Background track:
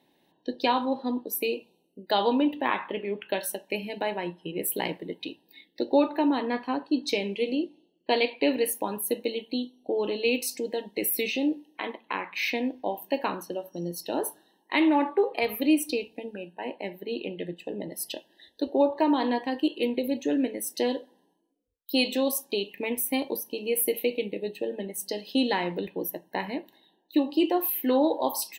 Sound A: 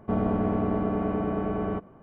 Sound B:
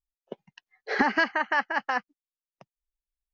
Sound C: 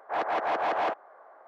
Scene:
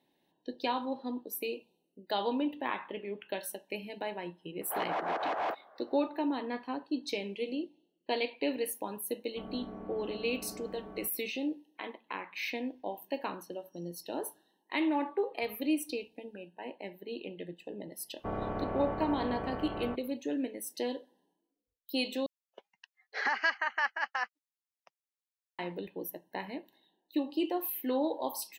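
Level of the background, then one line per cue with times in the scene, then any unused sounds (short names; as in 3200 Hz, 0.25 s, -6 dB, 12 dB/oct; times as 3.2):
background track -8 dB
4.61 add C -5.5 dB
9.28 add A -17.5 dB + bell 100 Hz -11 dB
18.16 add A -10 dB, fades 0.10 s + spectral limiter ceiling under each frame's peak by 15 dB
22.26 replace with B -3.5 dB + Bessel high-pass 1000 Hz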